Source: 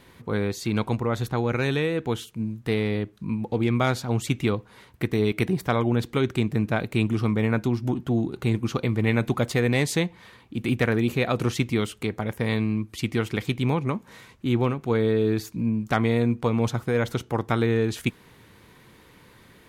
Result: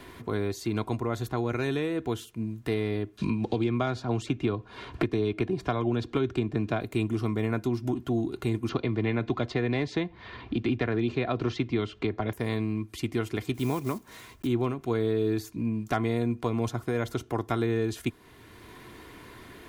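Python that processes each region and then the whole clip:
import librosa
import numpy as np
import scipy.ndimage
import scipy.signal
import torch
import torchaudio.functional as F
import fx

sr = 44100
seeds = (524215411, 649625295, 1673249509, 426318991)

y = fx.chain(x, sr, fx.lowpass(hz=4400.0, slope=12),
    fx.notch(hz=2000.0, q=11.0),
    fx.band_squash(depth_pct=100), at=(3.18, 6.81))
y = fx.chain(y, sr, fx.lowpass(hz=4600.0, slope=24),
    fx.band_squash(depth_pct=70), at=(8.69, 12.33))
y = fx.chain(y, sr, fx.block_float(bits=5),
    fx.high_shelf(hz=6300.0, db=6.0), at=(13.54, 14.48))
y = y + 0.49 * np.pad(y, (int(2.9 * sr / 1000.0), 0))[:len(y)]
y = fx.dynamic_eq(y, sr, hz=2600.0, q=0.81, threshold_db=-40.0, ratio=4.0, max_db=-4)
y = fx.band_squash(y, sr, depth_pct=40)
y = F.gain(torch.from_numpy(y), -4.5).numpy()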